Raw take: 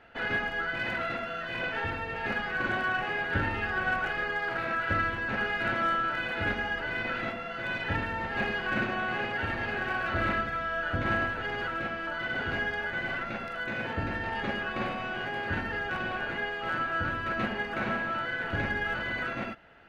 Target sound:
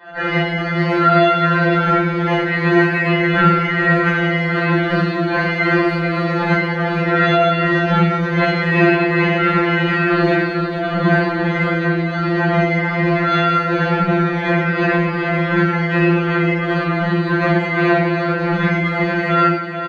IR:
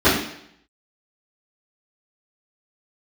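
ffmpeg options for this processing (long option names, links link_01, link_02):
-filter_complex "[0:a]aecho=1:1:445:0.355[link_01];[1:a]atrim=start_sample=2205[link_02];[link_01][link_02]afir=irnorm=-1:irlink=0,afftfilt=real='re*2.83*eq(mod(b,8),0)':imag='im*2.83*eq(mod(b,8),0)':win_size=2048:overlap=0.75,volume=-3.5dB"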